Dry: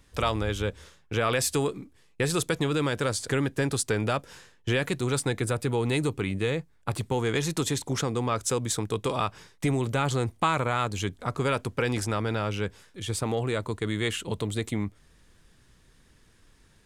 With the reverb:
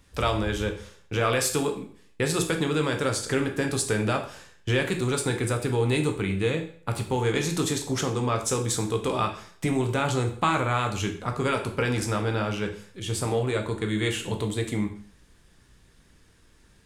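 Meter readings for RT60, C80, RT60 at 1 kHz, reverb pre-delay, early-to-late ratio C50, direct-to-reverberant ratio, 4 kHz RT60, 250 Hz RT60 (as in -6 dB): 0.50 s, 13.5 dB, 0.50 s, 6 ms, 9.5 dB, 3.5 dB, 0.45 s, 0.45 s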